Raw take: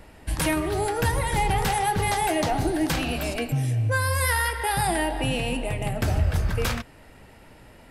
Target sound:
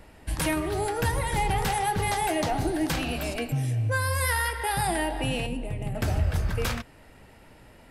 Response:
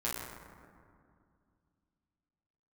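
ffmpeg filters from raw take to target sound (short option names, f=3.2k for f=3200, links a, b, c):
-filter_complex "[0:a]asettb=1/sr,asplit=3[a][b][c];[a]atrim=end=5.464[d];[b]atrim=start=5.46:end=5.95,asetpts=PTS-STARTPTS,afade=t=in:d=0.004:c=qsin,afade=t=out:st=0.486:d=0.004:c=qsin,acrossover=split=430[e][f];[f]acompressor=threshold=-46dB:ratio=2[g];[e][g]amix=inputs=2:normalize=0[h];[c]atrim=start=5.946[i];[d][h]acrossfade=d=0.004:c1=hsin:c2=qsin[j];[j][i]acrossfade=d=0.004:c1=qsin:c2=hsin,volume=-2.5dB"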